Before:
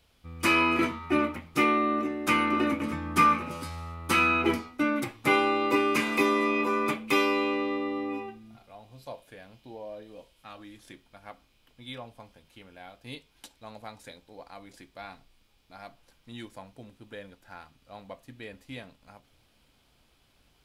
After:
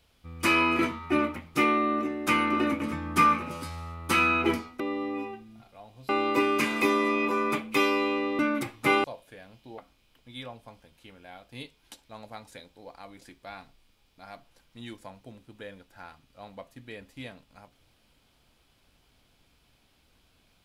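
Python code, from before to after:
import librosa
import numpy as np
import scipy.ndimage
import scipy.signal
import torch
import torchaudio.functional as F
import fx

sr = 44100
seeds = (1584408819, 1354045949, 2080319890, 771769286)

y = fx.edit(x, sr, fx.swap(start_s=4.8, length_s=0.65, other_s=7.75, other_length_s=1.29),
    fx.cut(start_s=9.78, length_s=1.52), tone=tone)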